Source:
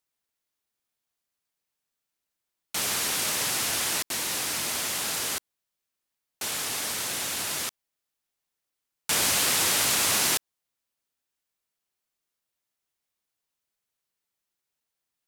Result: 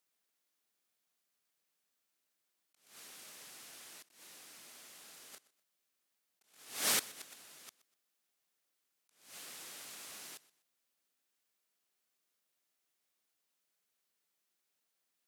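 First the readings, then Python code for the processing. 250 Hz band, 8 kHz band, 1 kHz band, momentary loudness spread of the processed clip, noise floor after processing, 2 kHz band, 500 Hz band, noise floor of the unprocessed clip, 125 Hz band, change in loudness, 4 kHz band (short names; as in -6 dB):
-18.5 dB, -17.5 dB, -18.5 dB, 22 LU, -84 dBFS, -17.5 dB, -17.0 dB, -85 dBFS, -23.5 dB, -14.5 dB, -17.5 dB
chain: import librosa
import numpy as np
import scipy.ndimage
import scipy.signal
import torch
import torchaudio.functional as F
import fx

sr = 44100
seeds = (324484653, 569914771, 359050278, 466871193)

p1 = scipy.signal.sosfilt(scipy.signal.butter(2, 170.0, 'highpass', fs=sr, output='sos'), x)
p2 = fx.peak_eq(p1, sr, hz=930.0, db=-3.5, octaves=0.25)
p3 = fx.gate_flip(p2, sr, shuts_db=-20.0, range_db=-27)
p4 = p3 + fx.echo_feedback(p3, sr, ms=124, feedback_pct=30, wet_db=-20.0, dry=0)
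p5 = fx.attack_slew(p4, sr, db_per_s=120.0)
y = p5 * librosa.db_to_amplitude(1.0)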